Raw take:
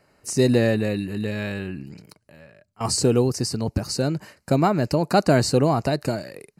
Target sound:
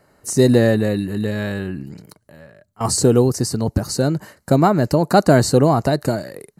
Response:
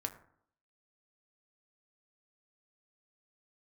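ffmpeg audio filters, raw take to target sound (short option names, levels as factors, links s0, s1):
-af "equalizer=f=2500:t=o:w=0.33:g=-11,equalizer=f=5000:t=o:w=0.33:g=-6,equalizer=f=12500:t=o:w=0.33:g=4,volume=1.78"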